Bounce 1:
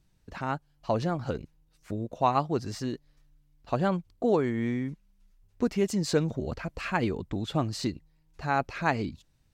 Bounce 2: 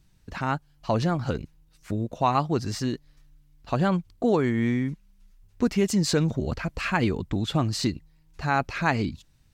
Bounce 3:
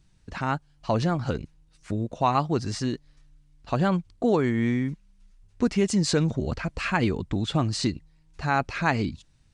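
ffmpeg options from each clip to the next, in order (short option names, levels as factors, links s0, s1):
-filter_complex "[0:a]asplit=2[s0][s1];[s1]alimiter=limit=0.126:level=0:latency=1,volume=1.12[s2];[s0][s2]amix=inputs=2:normalize=0,equalizer=f=530:t=o:w=1.7:g=-4.5"
-af "aresample=22050,aresample=44100"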